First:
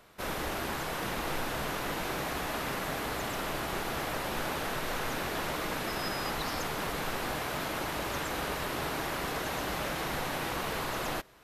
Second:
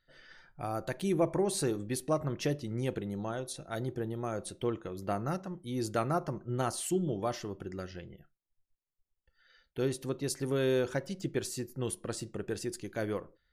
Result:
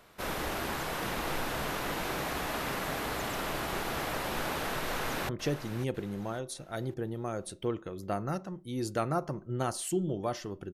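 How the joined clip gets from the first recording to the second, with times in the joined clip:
first
0:04.84–0:05.29: delay throw 550 ms, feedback 35%, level −11.5 dB
0:05.29: continue with second from 0:02.28

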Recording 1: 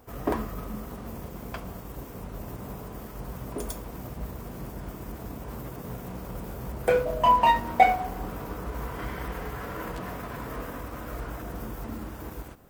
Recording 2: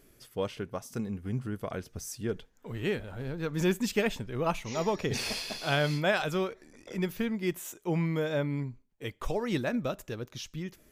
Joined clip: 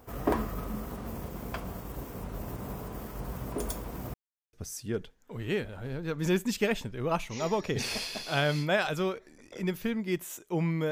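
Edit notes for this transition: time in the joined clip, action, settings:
recording 1
0:04.14–0:04.53: silence
0:04.53: continue with recording 2 from 0:01.88

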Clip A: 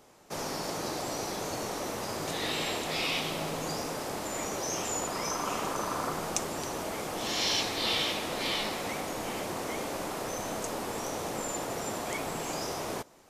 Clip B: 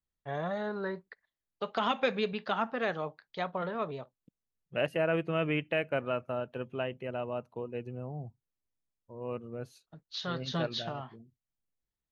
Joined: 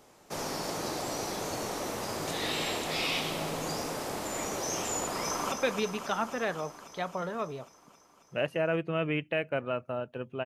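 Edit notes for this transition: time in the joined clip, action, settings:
clip A
0:05.23–0:05.52: delay throw 270 ms, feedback 75%, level −6.5 dB
0:05.52: continue with clip B from 0:01.92

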